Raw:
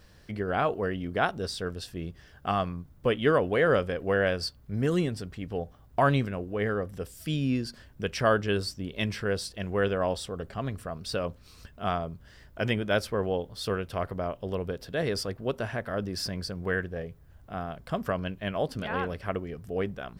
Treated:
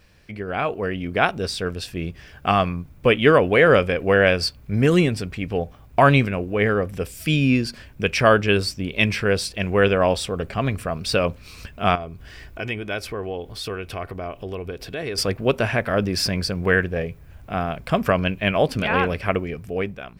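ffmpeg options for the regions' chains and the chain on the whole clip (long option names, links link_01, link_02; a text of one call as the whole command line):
ffmpeg -i in.wav -filter_complex "[0:a]asettb=1/sr,asplit=3[link_01][link_02][link_03];[link_01]atrim=end=11.954[link_04];[link_02]atrim=start=11.95:end=15.18,asetpts=PTS-STARTPTS,afade=type=in:duration=0.004:curve=qsin,afade=type=out:start_time=3.226:duration=0.004:curve=qsin,aecho=1:1:2.7:0.34,atrim=end_sample=142443,acompressor=threshold=-45dB:ratio=2:attack=3.2:release=140:knee=1:detection=peak[link_05];[link_03]atrim=start=15.176[link_06];[link_04][link_05]acrossfade=duration=0.004:curve1=hsin:curve2=qsin[link_07];[link_07][link_06]acrossfade=duration=0.004:curve1=qsin:curve2=hsin,equalizer=frequency=2400:width=4.2:gain=10.5,dynaudnorm=framelen=190:gausssize=9:maxgain=10.5dB" out.wav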